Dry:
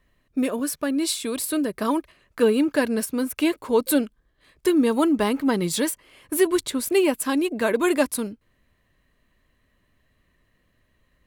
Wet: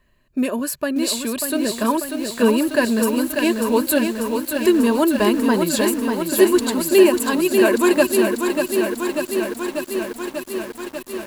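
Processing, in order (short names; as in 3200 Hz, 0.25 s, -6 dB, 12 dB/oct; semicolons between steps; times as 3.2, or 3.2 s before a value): ripple EQ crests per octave 1.4, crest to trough 7 dB; lo-fi delay 0.592 s, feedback 80%, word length 7-bit, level -5.5 dB; gain +2.5 dB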